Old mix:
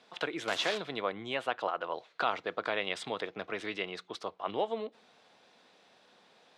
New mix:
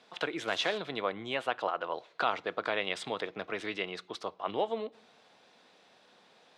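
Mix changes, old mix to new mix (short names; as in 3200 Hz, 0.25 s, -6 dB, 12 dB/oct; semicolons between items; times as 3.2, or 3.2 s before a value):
speech: send +8.5 dB; background -8.5 dB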